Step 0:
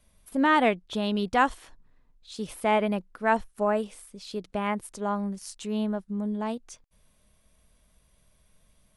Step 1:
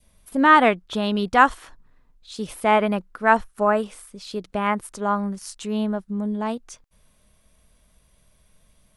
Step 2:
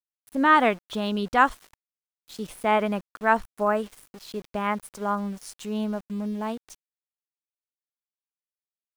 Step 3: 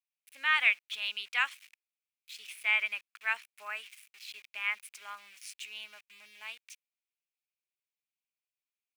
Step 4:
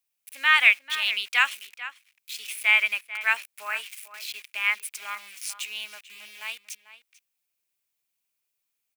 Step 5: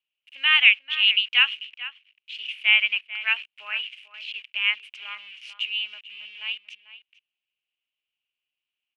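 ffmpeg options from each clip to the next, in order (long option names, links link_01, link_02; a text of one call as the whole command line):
ffmpeg -i in.wav -af "adynamicequalizer=threshold=0.0112:dfrequency=1300:dqfactor=1.6:tfrequency=1300:tqfactor=1.6:attack=5:release=100:ratio=0.375:range=3.5:mode=boostabove:tftype=bell,volume=4dB" out.wav
ffmpeg -i in.wav -af "aeval=exprs='val(0)*gte(abs(val(0)),0.0112)':channel_layout=same,volume=-4dB" out.wav
ffmpeg -i in.wav -af "highpass=frequency=2400:width_type=q:width=5.1,volume=-5.5dB" out.wav
ffmpeg -i in.wav -filter_complex "[0:a]crystalizer=i=1:c=0,asplit=2[link_01][link_02];[link_02]adelay=443.1,volume=-13dB,highshelf=frequency=4000:gain=-9.97[link_03];[link_01][link_03]amix=inputs=2:normalize=0,volume=7.5dB" out.wav
ffmpeg -i in.wav -af "lowpass=frequency=2900:width_type=q:width=10,volume=-8.5dB" out.wav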